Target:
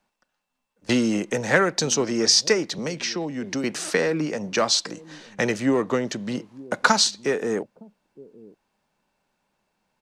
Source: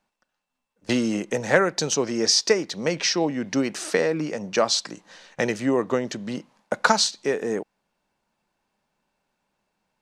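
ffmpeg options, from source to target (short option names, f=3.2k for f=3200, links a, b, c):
-filter_complex "[0:a]asettb=1/sr,asplit=3[a][b][c];[a]atrim=end=2.784[d];[b]atrim=start=2.78:end=3.64,asetpts=PTS-STARTPTS,afade=t=in:d=0.004:c=qsin,afade=t=out:st=0.856:d=0.004:c=qsin,acrossover=split=230|4000[e][f][g];[e]acompressor=threshold=-36dB:ratio=4[h];[f]acompressor=threshold=-31dB:ratio=4[i];[g]acompressor=threshold=-34dB:ratio=4[j];[h][i][j]amix=inputs=3:normalize=0[k];[c]atrim=start=3.636[l];[d][k]acrossfade=d=0.004:c1=hsin:c2=qsin[m];[m][l]acrossfade=d=0.004:c1=qsin:c2=hsin,acrossover=split=460|810[n][o][p];[n]aecho=1:1:913:0.119[q];[o]volume=34dB,asoftclip=hard,volume=-34dB[r];[q][r][p]amix=inputs=3:normalize=0,volume=2dB"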